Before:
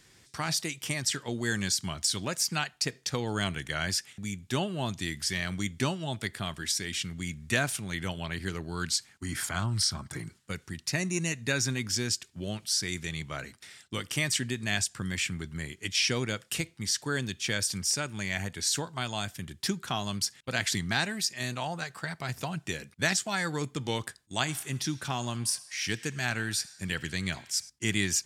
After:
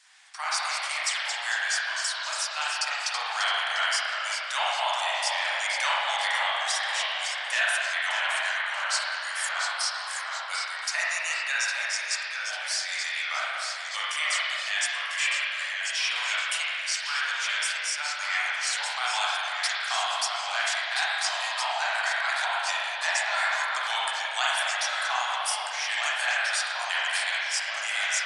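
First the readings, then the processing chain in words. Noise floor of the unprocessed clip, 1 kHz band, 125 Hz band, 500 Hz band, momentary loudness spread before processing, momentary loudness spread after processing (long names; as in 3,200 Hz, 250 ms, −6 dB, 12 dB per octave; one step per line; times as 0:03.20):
−62 dBFS, +9.5 dB, below −40 dB, −2.0 dB, 8 LU, 4 LU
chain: Butterworth high-pass 710 Hz 48 dB per octave
harmonic and percussive parts rebalanced percussive +7 dB
speech leveller within 4 dB 0.5 s
spring reverb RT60 2.3 s, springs 31/39 ms, chirp 25 ms, DRR −7 dB
delay with pitch and tempo change per echo 160 ms, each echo −1 semitone, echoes 3, each echo −6 dB
level −6 dB
MP3 160 kbit/s 24,000 Hz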